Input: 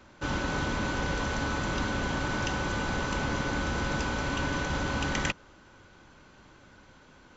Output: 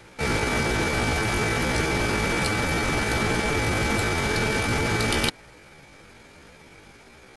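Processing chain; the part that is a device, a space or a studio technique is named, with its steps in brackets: chipmunk voice (pitch shift +7.5 st); trim +6.5 dB

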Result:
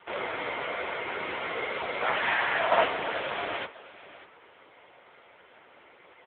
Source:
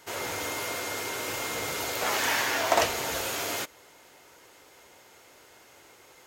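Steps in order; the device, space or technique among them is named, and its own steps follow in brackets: satellite phone (band-pass 330–3300 Hz; delay 596 ms -17 dB; trim +5.5 dB; AMR-NB 6.7 kbps 8 kHz)

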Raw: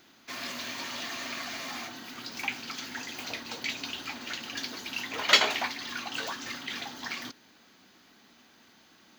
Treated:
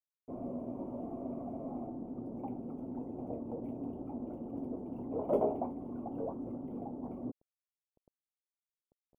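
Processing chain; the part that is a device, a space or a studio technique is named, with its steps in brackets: early 8-bit sampler (sample-rate reducer 15 kHz, jitter 0%; bit crusher 8-bit); inverse Chebyshev low-pass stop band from 1.6 kHz, stop band 50 dB; trim +6 dB

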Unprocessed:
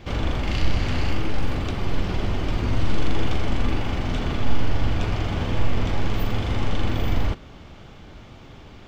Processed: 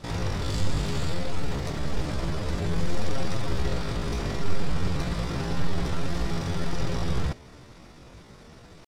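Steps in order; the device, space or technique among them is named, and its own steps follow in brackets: chipmunk voice (pitch shift +8.5 st); trim -4.5 dB

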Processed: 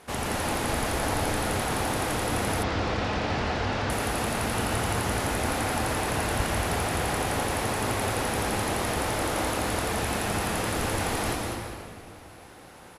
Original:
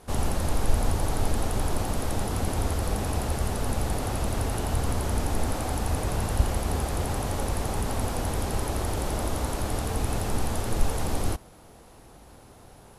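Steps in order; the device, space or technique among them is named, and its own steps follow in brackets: PA in a hall (high-pass 180 Hz 6 dB/octave; peaking EQ 2.1 kHz +7.5 dB 1.4 oct; delay 196 ms -8 dB; reverberation RT60 2.1 s, pre-delay 117 ms, DRR 2 dB); 2.63–3.90 s: low-pass 5.5 kHz 24 dB/octave

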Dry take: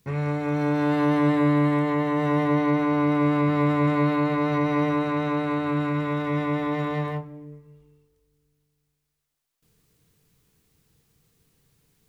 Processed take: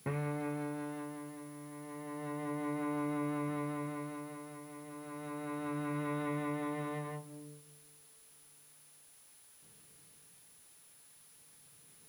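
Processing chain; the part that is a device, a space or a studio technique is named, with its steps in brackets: medium wave at night (band-pass 130–3700 Hz; compression 6:1, threshold -37 dBFS, peak gain reduction 18.5 dB; tremolo 0.32 Hz, depth 79%; whistle 10 kHz -63 dBFS; white noise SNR 23 dB); trim +2.5 dB

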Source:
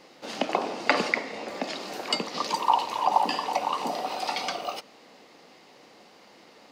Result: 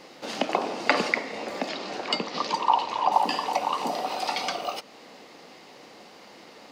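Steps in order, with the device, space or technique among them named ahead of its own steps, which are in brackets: parallel compression (in parallel at -2.5 dB: compression, threshold -41 dBFS, peak gain reduction 23 dB); 1.69–3.12 s: on the sum: low-pass 5.4 kHz 12 dB/octave

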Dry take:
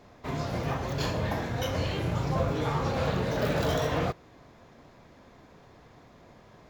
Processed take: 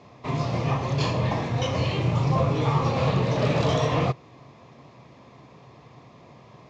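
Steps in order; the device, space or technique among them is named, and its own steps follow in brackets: car door speaker (cabinet simulation 93–6800 Hz, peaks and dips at 130 Hz +9 dB, 1.1 kHz +6 dB, 1.5 kHz -10 dB, 2.5 kHz +4 dB); trim +3.5 dB

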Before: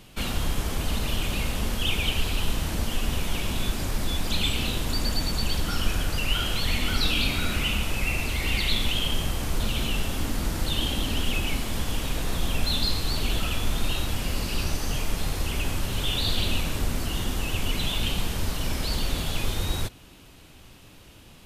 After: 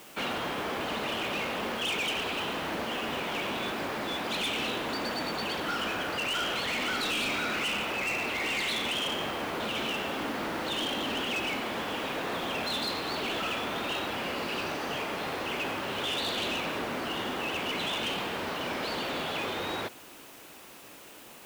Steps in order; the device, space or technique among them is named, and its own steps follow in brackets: aircraft radio (band-pass 360–2400 Hz; hard clipper -32.5 dBFS, distortion -13 dB; white noise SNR 20 dB); trim +5 dB

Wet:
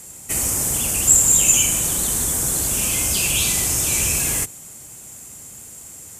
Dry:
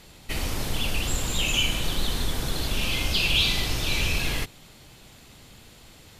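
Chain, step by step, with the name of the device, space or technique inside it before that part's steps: budget condenser microphone (high-pass 63 Hz; resonant high shelf 5.6 kHz +12.5 dB, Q 3); trim +2.5 dB

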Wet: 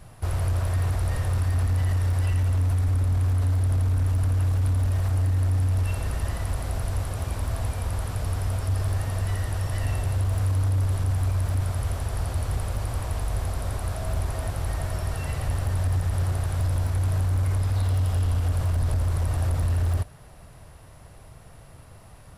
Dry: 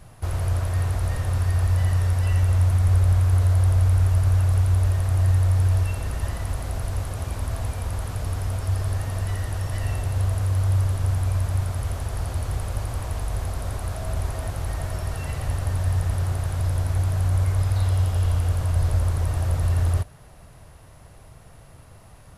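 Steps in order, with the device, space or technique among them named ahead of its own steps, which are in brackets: band-stop 6.5 kHz, Q 21; limiter into clipper (peak limiter -16 dBFS, peak gain reduction 5.5 dB; hard clipper -19 dBFS, distortion -21 dB)

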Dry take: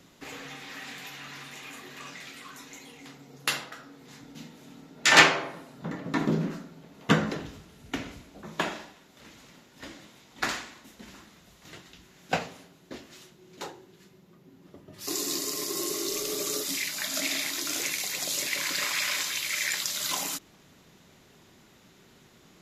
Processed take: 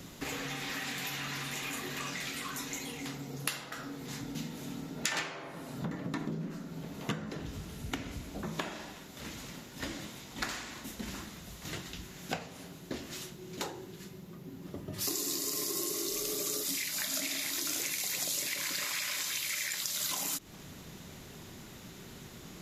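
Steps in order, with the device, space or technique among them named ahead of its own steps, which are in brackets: ASMR close-microphone chain (bass shelf 180 Hz +8 dB; compression 8:1, threshold -40 dBFS, peak gain reduction 28 dB; treble shelf 7.2 kHz +7.5 dB); trim +5.5 dB

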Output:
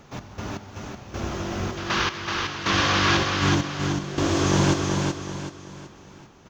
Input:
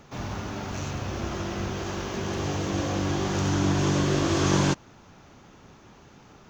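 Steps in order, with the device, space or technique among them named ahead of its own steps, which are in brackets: 1.77–3.17 s: high-order bell 2.3 kHz +14 dB 2.7 oct; trance gate with a delay (trance gate "x.x...xx" 79 bpm -12 dB; feedback delay 378 ms, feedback 38%, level -4 dB); trim +1.5 dB

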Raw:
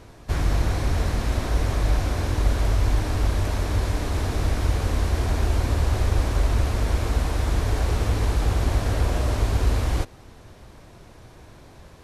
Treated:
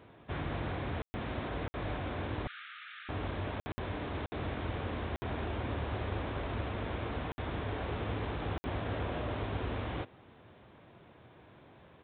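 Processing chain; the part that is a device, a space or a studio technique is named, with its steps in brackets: call with lost packets (high-pass 120 Hz 12 dB/octave; resampled via 8 kHz; lost packets of 60 ms); 2.47–3.09 s: Chebyshev high-pass 1.2 kHz, order 10; trim -7.5 dB

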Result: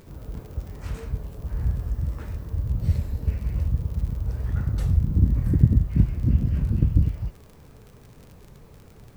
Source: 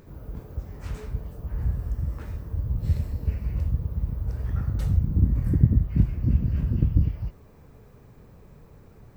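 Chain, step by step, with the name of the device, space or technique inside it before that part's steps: warped LP (warped record 33 1/3 rpm, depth 100 cents; crackle 55 per s -39 dBFS; pink noise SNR 39 dB); trim +1.5 dB

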